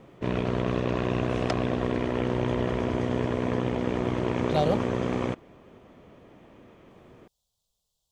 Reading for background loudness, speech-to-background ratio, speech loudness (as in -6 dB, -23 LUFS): -28.0 LUFS, -1.0 dB, -29.0 LUFS